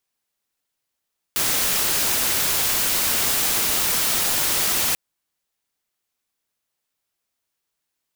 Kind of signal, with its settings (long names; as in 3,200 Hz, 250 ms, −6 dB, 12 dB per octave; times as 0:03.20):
noise white, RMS −21 dBFS 3.59 s